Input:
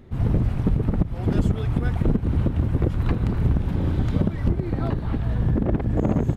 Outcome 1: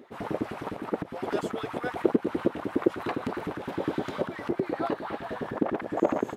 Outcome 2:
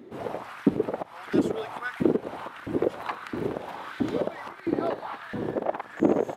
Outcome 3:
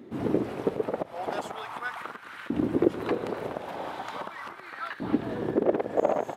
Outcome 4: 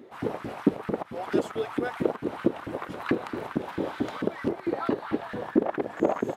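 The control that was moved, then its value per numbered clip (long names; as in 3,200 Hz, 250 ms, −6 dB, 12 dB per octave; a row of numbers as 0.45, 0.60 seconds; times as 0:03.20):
auto-filter high-pass, speed: 9.8, 1.5, 0.4, 4.5 Hertz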